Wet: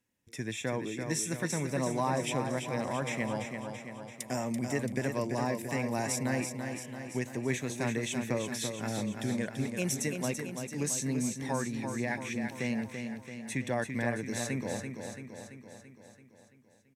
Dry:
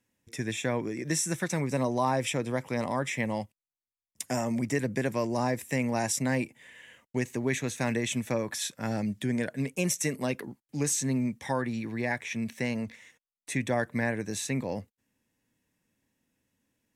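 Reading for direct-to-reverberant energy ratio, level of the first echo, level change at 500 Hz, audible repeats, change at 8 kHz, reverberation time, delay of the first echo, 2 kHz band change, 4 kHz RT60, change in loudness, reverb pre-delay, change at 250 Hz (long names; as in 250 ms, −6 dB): no reverb audible, −6.5 dB, −2.5 dB, 7, −2.5 dB, no reverb audible, 336 ms, −2.5 dB, no reverb audible, −3.0 dB, no reverb audible, −2.5 dB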